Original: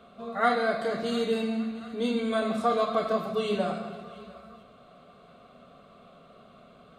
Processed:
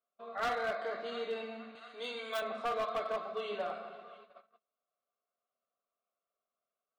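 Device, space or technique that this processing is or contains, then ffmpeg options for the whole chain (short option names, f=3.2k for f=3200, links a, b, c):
walkie-talkie: -filter_complex "[0:a]highpass=530,lowpass=3k,asoftclip=type=hard:threshold=-24.5dB,agate=range=-32dB:threshold=-48dB:ratio=16:detection=peak,asettb=1/sr,asplit=3[a][b][c];[a]atrim=end=1.754[d];[b]atrim=start=1.75:end=2.42,asetpts=PTS-STARTPTS,afade=t=in:d=0.004:c=qsin,afade=t=out:st=0.666:d=0.004:c=qsin,aemphasis=mode=production:type=riaa[e];[c]atrim=start=2.416[f];[d][e]acrossfade=d=0.004:c1=hsin:c2=qsin[g];[g][f]acrossfade=d=0.004:c1=qsin:c2=hsin,volume=-5dB"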